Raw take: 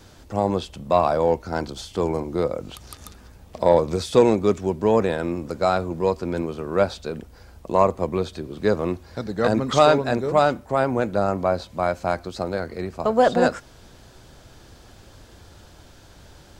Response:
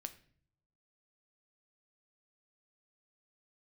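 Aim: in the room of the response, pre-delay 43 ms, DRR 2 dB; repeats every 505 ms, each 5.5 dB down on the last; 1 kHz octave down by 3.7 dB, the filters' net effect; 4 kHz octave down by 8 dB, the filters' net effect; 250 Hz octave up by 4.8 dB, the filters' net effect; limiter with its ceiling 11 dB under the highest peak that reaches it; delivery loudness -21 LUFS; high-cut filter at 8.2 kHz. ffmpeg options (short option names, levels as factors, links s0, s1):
-filter_complex "[0:a]lowpass=8200,equalizer=f=250:t=o:g=6.5,equalizer=f=1000:t=o:g=-5.5,equalizer=f=4000:t=o:g=-9,alimiter=limit=0.211:level=0:latency=1,aecho=1:1:505|1010|1515|2020|2525|3030|3535:0.531|0.281|0.149|0.079|0.0419|0.0222|0.0118,asplit=2[s0][s1];[1:a]atrim=start_sample=2205,adelay=43[s2];[s1][s2]afir=irnorm=-1:irlink=0,volume=1.19[s3];[s0][s3]amix=inputs=2:normalize=0,volume=1.19"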